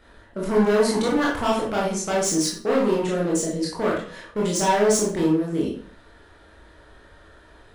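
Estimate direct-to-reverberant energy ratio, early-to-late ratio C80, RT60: -5.0 dB, 8.5 dB, 0.45 s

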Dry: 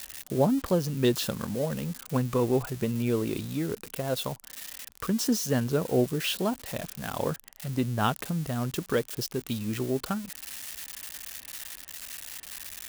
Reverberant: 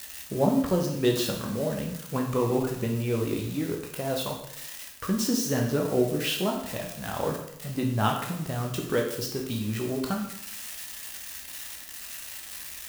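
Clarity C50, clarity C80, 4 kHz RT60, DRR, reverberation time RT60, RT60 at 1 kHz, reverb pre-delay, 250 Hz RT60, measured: 5.5 dB, 8.5 dB, 0.70 s, 0.0 dB, 0.75 s, 0.75 s, 6 ms, 0.75 s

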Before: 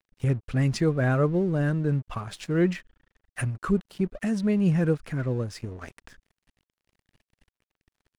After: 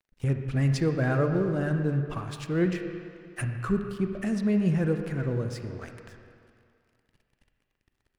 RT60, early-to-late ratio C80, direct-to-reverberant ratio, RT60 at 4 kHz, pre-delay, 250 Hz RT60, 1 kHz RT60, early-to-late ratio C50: 2.3 s, 7.0 dB, 5.5 dB, 2.1 s, 34 ms, 2.2 s, 2.4 s, 6.0 dB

